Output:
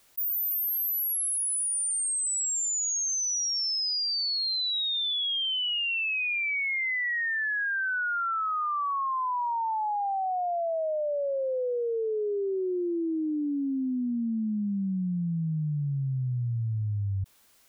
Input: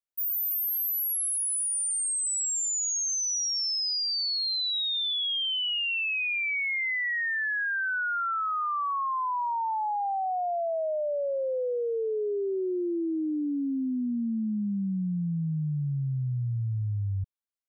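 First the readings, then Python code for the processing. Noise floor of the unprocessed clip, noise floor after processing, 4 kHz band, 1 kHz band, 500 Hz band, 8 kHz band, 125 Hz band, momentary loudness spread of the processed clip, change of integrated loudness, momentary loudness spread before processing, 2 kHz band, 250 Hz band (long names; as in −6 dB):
−29 dBFS, −29 dBFS, 0.0 dB, 0.0 dB, 0.0 dB, 0.0 dB, 0.0 dB, 5 LU, 0.0 dB, 5 LU, 0.0 dB, 0.0 dB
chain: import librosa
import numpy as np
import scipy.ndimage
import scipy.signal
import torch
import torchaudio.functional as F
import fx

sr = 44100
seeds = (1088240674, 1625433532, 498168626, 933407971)

y = fx.env_flatten(x, sr, amount_pct=50)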